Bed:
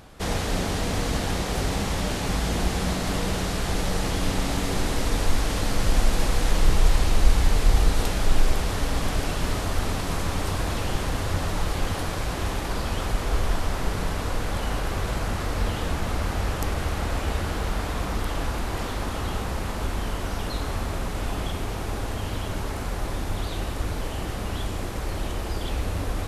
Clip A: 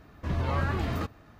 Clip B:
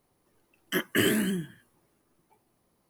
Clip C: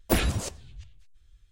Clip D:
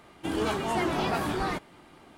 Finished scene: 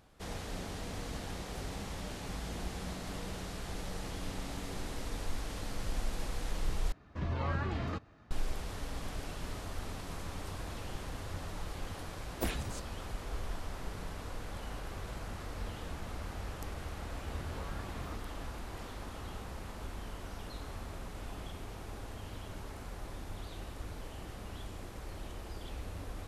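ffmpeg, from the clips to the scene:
ffmpeg -i bed.wav -i cue0.wav -i cue1.wav -i cue2.wav -filter_complex "[1:a]asplit=2[link_01][link_02];[0:a]volume=-15dB[link_03];[link_01]lowpass=7300[link_04];[link_02]acompressor=threshold=-41dB:ratio=6:attack=3.2:release=140:knee=1:detection=peak[link_05];[link_03]asplit=2[link_06][link_07];[link_06]atrim=end=6.924[link_08];[link_04]atrim=end=1.39,asetpts=PTS-STARTPTS,volume=-6dB[link_09];[link_07]atrim=start=8.306[link_10];[3:a]atrim=end=1.51,asetpts=PTS-STARTPTS,volume=-11.5dB,afade=type=in:duration=0.004:curve=hsin,afade=type=out:start_time=1.506:duration=0.004:curve=hsin,adelay=12310[link_11];[link_05]atrim=end=1.39,asetpts=PTS-STARTPTS,volume=-1.5dB,afade=type=in:duration=0.004:curve=hsin,afade=type=out:start_time=1.386:duration=0.004:curve=hsin,adelay=17100[link_12];[link_08][link_09]acrossfade=duration=0.004:curve1=hsin:curve2=hsin[link_13];[link_13][link_10]acrossfade=duration=0.004:curve1=hsin:curve2=hsin[link_14];[link_14][link_11][link_12]amix=inputs=3:normalize=0" out.wav

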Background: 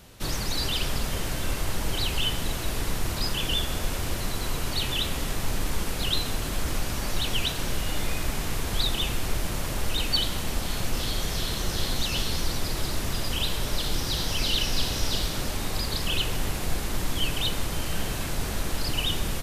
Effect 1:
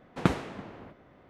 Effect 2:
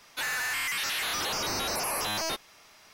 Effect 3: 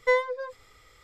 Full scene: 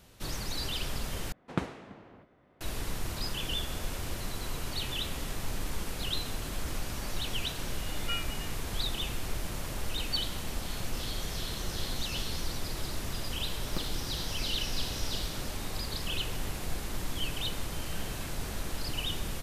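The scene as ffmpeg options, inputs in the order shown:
ffmpeg -i bed.wav -i cue0.wav -i cue1.wav -i cue2.wav -filter_complex "[1:a]asplit=2[link_01][link_02];[0:a]volume=-7dB[link_03];[3:a]lowpass=frequency=2900:width_type=q:width=0.5098,lowpass=frequency=2900:width_type=q:width=0.6013,lowpass=frequency=2900:width_type=q:width=0.9,lowpass=frequency=2900:width_type=q:width=2.563,afreqshift=-3400[link_04];[link_02]acrusher=bits=3:mode=log:mix=0:aa=0.000001[link_05];[link_03]asplit=2[link_06][link_07];[link_06]atrim=end=1.324[link_08];[link_01]atrim=end=1.29,asetpts=PTS-STARTPTS,volume=-7dB[link_09];[link_07]atrim=start=2.606[link_10];[link_04]atrim=end=1.03,asetpts=PTS-STARTPTS,volume=-14dB,afade=type=in:duration=0.004:curve=hsin,afade=type=out:start_time=1.026:duration=0.004:curve=hsin,adelay=8010[link_11];[link_05]atrim=end=1.29,asetpts=PTS-STARTPTS,volume=-15.5dB,afade=type=in:duration=0.004:curve=hsin,afade=type=out:start_time=1.286:duration=0.004:curve=hsin,adelay=13510[link_12];[link_08][link_09]acrossfade=duration=0.004:curve1=hsin:curve2=hsin[link_13];[link_13][link_10]acrossfade=duration=0.004:curve1=hsin:curve2=hsin[link_14];[link_14][link_11][link_12]amix=inputs=3:normalize=0" out.wav

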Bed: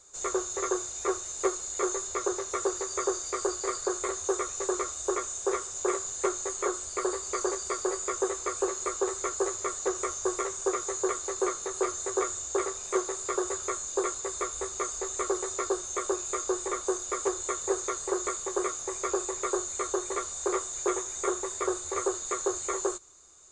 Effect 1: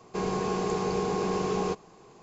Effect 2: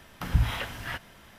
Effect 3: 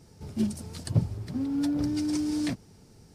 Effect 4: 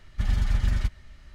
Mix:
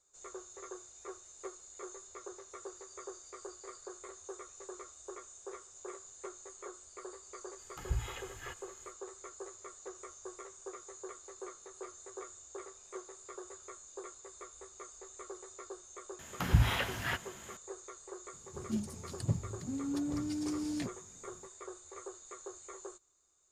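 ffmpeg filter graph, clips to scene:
ffmpeg -i bed.wav -i cue0.wav -i cue1.wav -i cue2.wav -filter_complex "[2:a]asplit=2[link_01][link_02];[0:a]volume=-17.5dB[link_03];[link_01]aecho=1:1:2.4:0.66[link_04];[link_02]highpass=64[link_05];[link_04]atrim=end=1.38,asetpts=PTS-STARTPTS,volume=-14dB,afade=type=in:duration=0.05,afade=type=out:start_time=1.33:duration=0.05,adelay=7560[link_06];[link_05]atrim=end=1.38,asetpts=PTS-STARTPTS,afade=type=in:duration=0.004:curve=hsin,afade=type=out:start_time=1.376:duration=0.004:curve=hsin,adelay=16190[link_07];[3:a]atrim=end=3.14,asetpts=PTS-STARTPTS,volume=-8dB,afade=type=in:duration=0.004:curve=hsin,afade=type=out:start_time=3.136:duration=0.004:curve=hsin,adelay=18330[link_08];[link_03][link_06][link_07][link_08]amix=inputs=4:normalize=0" out.wav

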